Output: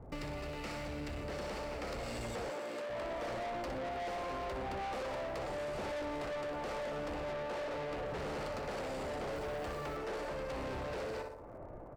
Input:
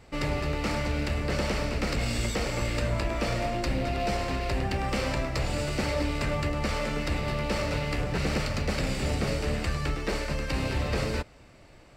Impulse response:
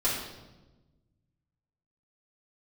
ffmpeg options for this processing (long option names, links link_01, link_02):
-filter_complex "[0:a]aecho=1:1:61|122|183|244|305:0.376|0.165|0.0728|0.032|0.0141,acrossover=split=400|1100[link_01][link_02][link_03];[link_01]tremolo=f=0.85:d=0.51[link_04];[link_02]dynaudnorm=framelen=580:gausssize=7:maxgain=15.5dB[link_05];[link_03]aeval=exprs='sgn(val(0))*max(abs(val(0))-0.00211,0)':channel_layout=same[link_06];[link_04][link_05][link_06]amix=inputs=3:normalize=0,asettb=1/sr,asplit=3[link_07][link_08][link_09];[link_07]atrim=end=7.314[link_10];[link_08]atrim=start=7.31:end=8.06,asetpts=PTS-STARTPTS,afade=type=in:duration=0.004:curve=qsin,afade=type=out:start_time=0.746:duration=0.004:curve=qsin,bass=frequency=250:gain=-1,treble=frequency=4000:gain=-4[link_11];[link_09]atrim=start=8.056[link_12];[link_10][link_11]acrossfade=duration=0.004:curve1=hsin:curve2=qsin[link_13];[link_13][link_12]acrossfade=duration=0.004:curve1=qsin:curve2=hsin,asoftclip=type=tanh:threshold=-26dB,asettb=1/sr,asplit=3[link_14][link_15][link_16];[link_14]atrim=end=2.504[link_17];[link_15]atrim=start=2.5:end=2.9,asetpts=PTS-STARTPTS,afade=type=in:duration=0.004:curve=qsin,afade=type=out:start_time=0.396:duration=0.004:curve=qsin,highpass=frequency=190:width=0.5412,highpass=frequency=190:width=1.3066[link_18];[link_16]atrim=start=2.896[link_19];[link_17][link_18]acrossfade=duration=0.004:curve1=hsin:curve2=qsin[link_20];[link_20][link_19]acrossfade=duration=0.004:curve1=qsin:curve2=hsin,asettb=1/sr,asplit=3[link_21][link_22][link_23];[link_21]atrim=end=9.334[link_24];[link_22]atrim=start=9.33:end=9.97,asetpts=PTS-STARTPTS,afade=type=in:duration=0.004:curve=qsin,afade=type=out:start_time=0.636:duration=0.004:curve=qsin,acrusher=bits=7:mix=0:aa=0.5[link_25];[link_23]atrim=start=9.966[link_26];[link_24][link_25]acrossfade=duration=0.004:curve1=hsin:curve2=qsin[link_27];[link_27][link_26]acrossfade=duration=0.004:curve1=qsin:curve2=hsin,acompressor=threshold=-45dB:ratio=4,volume=3dB"